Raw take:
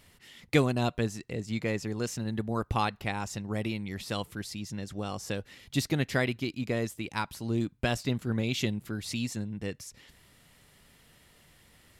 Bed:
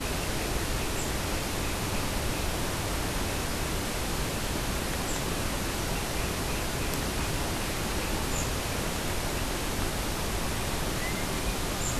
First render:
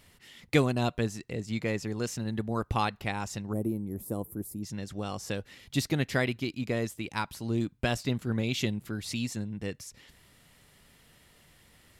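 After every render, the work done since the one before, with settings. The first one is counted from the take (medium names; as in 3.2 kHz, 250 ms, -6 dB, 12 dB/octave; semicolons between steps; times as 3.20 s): 3.53–4.63 s: FFT filter 170 Hz 0 dB, 330 Hz +5 dB, 1.1 kHz -9 dB, 1.6 kHz -19 dB, 2.9 kHz -28 dB, 4.4 kHz -25 dB, 6.3 kHz -13 dB, 12 kHz +11 dB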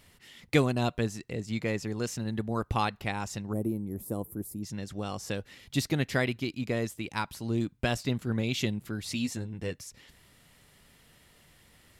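9.13–9.76 s: doubling 12 ms -6.5 dB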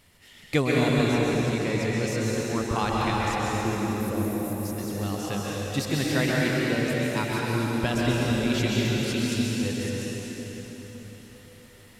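plate-style reverb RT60 4.6 s, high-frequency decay 0.85×, pre-delay 115 ms, DRR -5.5 dB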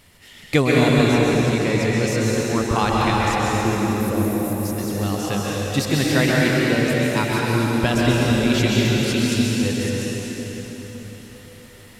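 trim +6.5 dB; peak limiter -3 dBFS, peak gain reduction 1 dB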